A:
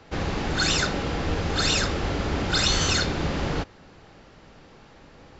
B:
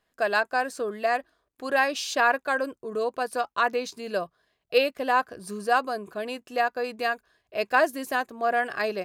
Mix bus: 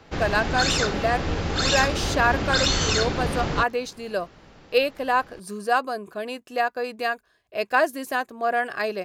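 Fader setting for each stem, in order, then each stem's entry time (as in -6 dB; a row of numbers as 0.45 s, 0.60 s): 0.0 dB, +1.0 dB; 0.00 s, 0.00 s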